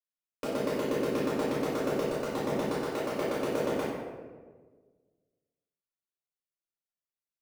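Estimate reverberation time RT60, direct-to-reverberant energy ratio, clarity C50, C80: 1.5 s, -11.0 dB, -2.0 dB, 1.5 dB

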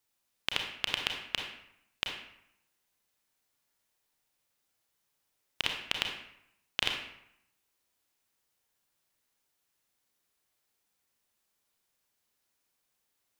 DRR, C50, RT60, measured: 2.0 dB, 3.5 dB, 0.75 s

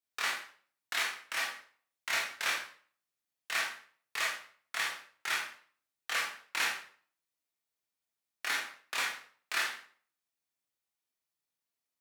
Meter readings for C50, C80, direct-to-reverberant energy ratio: 4.5 dB, 9.5 dB, -3.0 dB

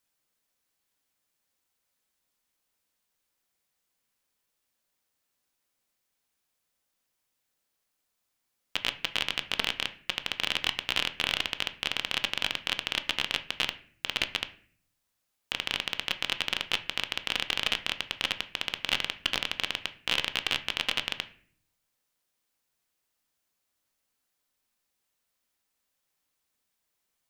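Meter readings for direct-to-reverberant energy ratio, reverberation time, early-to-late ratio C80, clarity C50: 8.5 dB, 0.50 s, 19.0 dB, 15.0 dB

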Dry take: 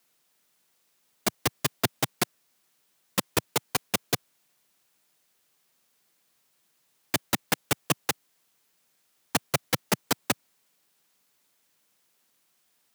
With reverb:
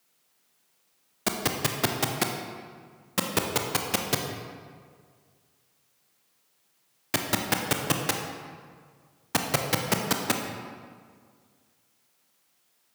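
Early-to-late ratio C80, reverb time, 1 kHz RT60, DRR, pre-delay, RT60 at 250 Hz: 5.5 dB, 1.9 s, 1.8 s, 2.5 dB, 22 ms, 2.0 s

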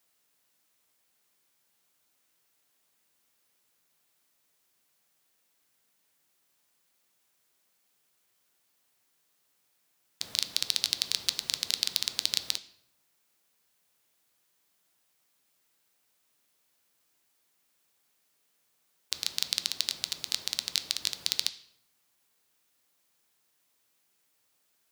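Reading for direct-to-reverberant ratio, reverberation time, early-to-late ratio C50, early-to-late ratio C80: 11.0 dB, 0.70 s, 15.5 dB, 18.5 dB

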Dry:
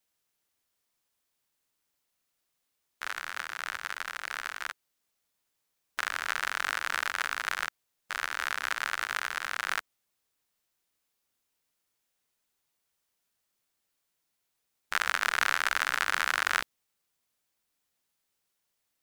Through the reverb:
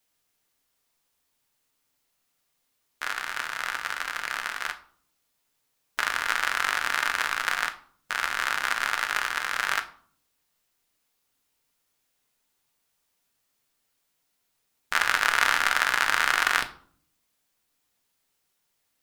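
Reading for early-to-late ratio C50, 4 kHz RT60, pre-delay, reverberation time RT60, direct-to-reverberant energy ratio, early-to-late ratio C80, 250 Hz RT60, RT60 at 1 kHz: 14.5 dB, 0.35 s, 4 ms, 0.55 s, 6.0 dB, 19.0 dB, 0.85 s, 0.50 s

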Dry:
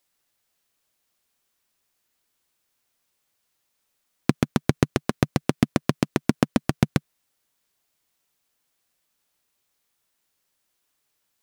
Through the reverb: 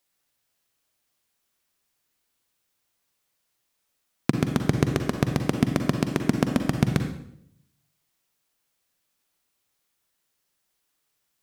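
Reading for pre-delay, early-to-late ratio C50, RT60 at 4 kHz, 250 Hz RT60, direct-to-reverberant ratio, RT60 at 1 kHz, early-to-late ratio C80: 38 ms, 6.5 dB, 0.60 s, 0.80 s, 5.5 dB, 0.60 s, 9.5 dB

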